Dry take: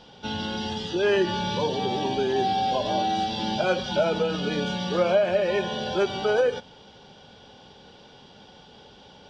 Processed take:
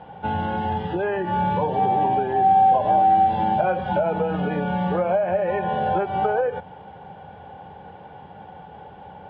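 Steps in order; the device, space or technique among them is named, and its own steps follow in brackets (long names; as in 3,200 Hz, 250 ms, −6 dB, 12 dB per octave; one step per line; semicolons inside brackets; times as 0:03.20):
bass amplifier (downward compressor 5 to 1, threshold −27 dBFS, peak gain reduction 10 dB; loudspeaker in its box 68–2,000 Hz, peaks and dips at 83 Hz +8 dB, 170 Hz +4 dB, 240 Hz −8 dB, 380 Hz −4 dB, 790 Hz +9 dB, 1,300 Hz −4 dB)
level +7 dB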